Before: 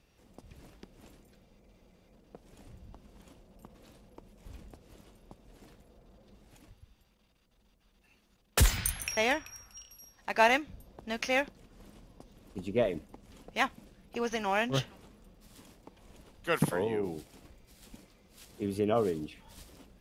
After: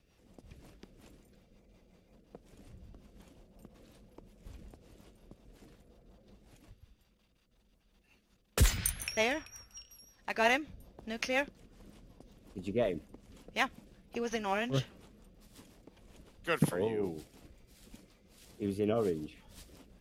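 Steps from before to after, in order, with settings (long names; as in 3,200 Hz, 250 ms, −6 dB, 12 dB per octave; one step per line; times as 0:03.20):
rotating-speaker cabinet horn 5.5 Hz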